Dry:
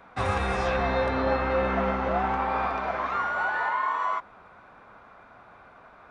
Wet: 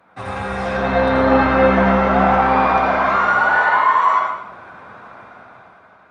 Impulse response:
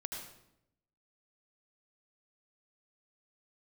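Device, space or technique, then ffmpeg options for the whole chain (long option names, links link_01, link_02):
far-field microphone of a smart speaker: -filter_complex "[1:a]atrim=start_sample=2205[link_01];[0:a][link_01]afir=irnorm=-1:irlink=0,highpass=frequency=83:width=0.5412,highpass=frequency=83:width=1.3066,dynaudnorm=framelen=200:gausssize=9:maxgain=11.5dB,volume=1.5dB" -ar 48000 -c:a libopus -b:a 32k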